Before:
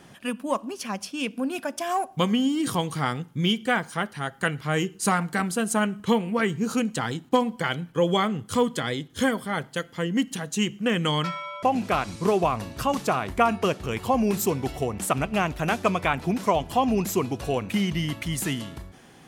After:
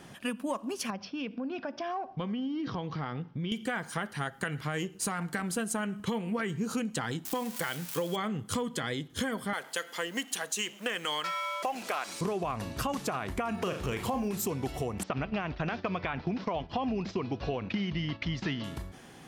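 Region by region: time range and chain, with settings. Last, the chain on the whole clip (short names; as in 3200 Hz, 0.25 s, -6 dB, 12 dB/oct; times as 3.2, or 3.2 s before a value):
0.9–3.52 steep low-pass 5700 Hz 72 dB/oct + high shelf 2900 Hz -9.5 dB + compressor 3:1, threshold -33 dBFS
4.64–5.58 half-wave gain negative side -3 dB + HPF 40 Hz
7.25–8.16 switching spikes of -24.5 dBFS + low shelf 230 Hz -7 dB
9.53–12.21 G.711 law mismatch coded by mu + HPF 510 Hz + high shelf 4500 Hz +5.5 dB
13.54–14.29 G.711 law mismatch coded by mu + flutter echo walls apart 6.6 m, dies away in 0.26 s
15.03–18.64 steep low-pass 5300 Hz 48 dB/oct + gate -37 dBFS, range -9 dB
whole clip: dynamic EQ 1700 Hz, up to +3 dB, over -38 dBFS, Q 2.9; limiter -16 dBFS; compressor, threshold -29 dBFS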